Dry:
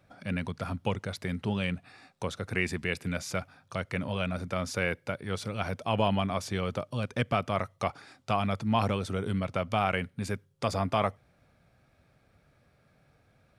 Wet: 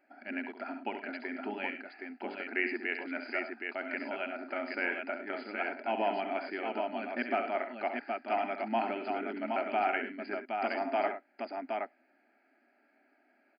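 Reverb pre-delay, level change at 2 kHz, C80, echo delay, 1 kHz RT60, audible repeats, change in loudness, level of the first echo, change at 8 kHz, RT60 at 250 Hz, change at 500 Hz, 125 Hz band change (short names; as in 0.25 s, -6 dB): none, +0.5 dB, none, 67 ms, none, 3, -3.5 dB, -8.5 dB, under -35 dB, none, -2.0 dB, under -25 dB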